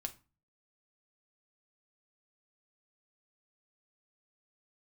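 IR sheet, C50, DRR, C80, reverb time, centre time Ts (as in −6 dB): 17.5 dB, 6.0 dB, 24.0 dB, 0.30 s, 6 ms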